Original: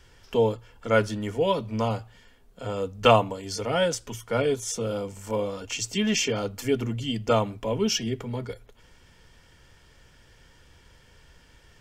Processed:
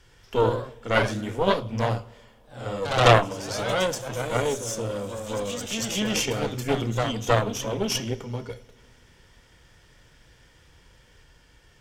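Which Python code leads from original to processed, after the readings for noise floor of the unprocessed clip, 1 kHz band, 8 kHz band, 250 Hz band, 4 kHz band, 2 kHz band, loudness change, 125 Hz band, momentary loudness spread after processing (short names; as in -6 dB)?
-57 dBFS, +2.5 dB, +1.0 dB, -1.0 dB, +1.5 dB, +4.0 dB, +1.0 dB, +3.0 dB, 12 LU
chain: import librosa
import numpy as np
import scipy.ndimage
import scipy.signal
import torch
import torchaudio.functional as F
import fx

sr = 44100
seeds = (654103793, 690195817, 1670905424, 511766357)

y = fx.rev_double_slope(x, sr, seeds[0], early_s=0.44, late_s=2.4, knee_db=-17, drr_db=10.0)
y = fx.cheby_harmonics(y, sr, harmonics=(4,), levels_db=(-8,), full_scale_db=-4.0)
y = fx.echo_pitch(y, sr, ms=93, semitones=1, count=3, db_per_echo=-6.0)
y = F.gain(torch.from_numpy(y), -1.5).numpy()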